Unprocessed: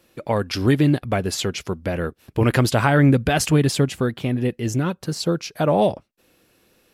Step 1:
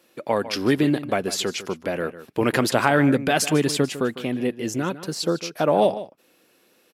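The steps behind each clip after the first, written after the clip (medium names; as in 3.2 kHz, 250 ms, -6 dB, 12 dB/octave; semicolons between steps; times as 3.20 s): high-pass 230 Hz 12 dB/octave; echo from a far wall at 26 m, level -14 dB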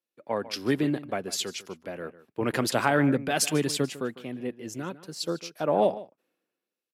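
three bands expanded up and down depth 70%; trim -6.5 dB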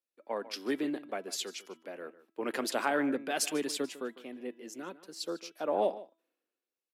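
high-pass 240 Hz 24 dB/octave; de-hum 328.5 Hz, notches 12; trim -6 dB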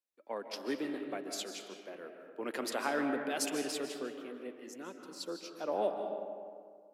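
reverberation RT60 2.0 s, pre-delay 110 ms, DRR 5 dB; trim -4 dB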